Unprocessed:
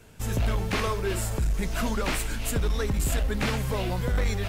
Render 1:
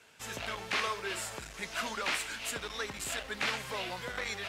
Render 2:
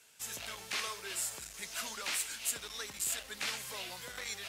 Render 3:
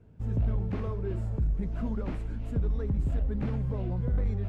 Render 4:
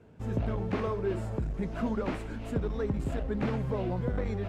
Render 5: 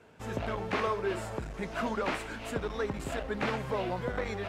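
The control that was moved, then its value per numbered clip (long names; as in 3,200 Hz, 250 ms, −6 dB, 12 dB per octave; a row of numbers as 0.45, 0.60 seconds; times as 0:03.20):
resonant band-pass, frequency: 2,700, 7,300, 100, 270, 740 Hertz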